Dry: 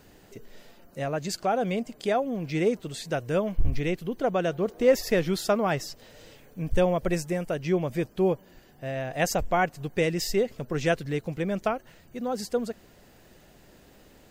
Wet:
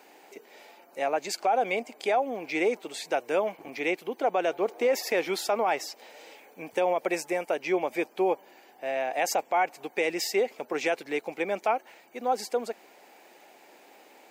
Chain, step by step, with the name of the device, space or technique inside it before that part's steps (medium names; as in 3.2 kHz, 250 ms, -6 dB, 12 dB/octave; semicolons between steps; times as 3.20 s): laptop speaker (high-pass 300 Hz 24 dB/octave; peaking EQ 830 Hz +11 dB 0.47 oct; peaking EQ 2.3 kHz +10.5 dB 0.28 oct; peak limiter -16.5 dBFS, peak gain reduction 8 dB)